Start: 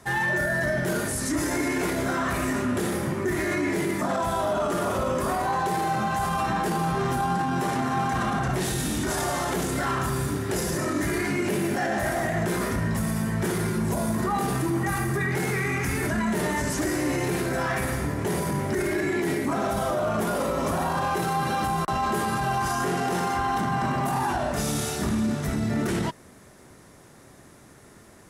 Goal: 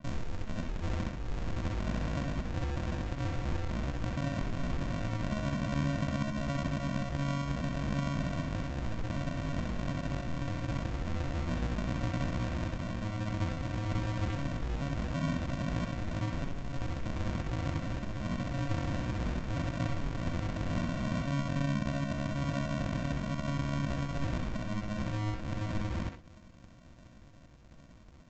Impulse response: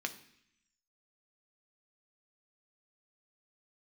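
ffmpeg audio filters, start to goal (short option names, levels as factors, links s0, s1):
-filter_complex "[0:a]highpass=f=240:w=0.5412,highpass=f=240:w=1.3066,acompressor=threshold=0.0398:ratio=6,aresample=11025,acrusher=samples=37:mix=1:aa=0.000001,aresample=44100,asetrate=62367,aresample=44100,atempo=0.707107,asplit=2[s0][s1];[1:a]atrim=start_sample=2205,atrim=end_sample=3528,adelay=65[s2];[s1][s2]afir=irnorm=-1:irlink=0,volume=0.501[s3];[s0][s3]amix=inputs=2:normalize=0,adynamicequalizer=threshold=0.00178:dfrequency=4300:dqfactor=0.7:tfrequency=4300:tqfactor=0.7:attack=5:release=100:ratio=0.375:range=3.5:mode=cutabove:tftype=highshelf,volume=0.841"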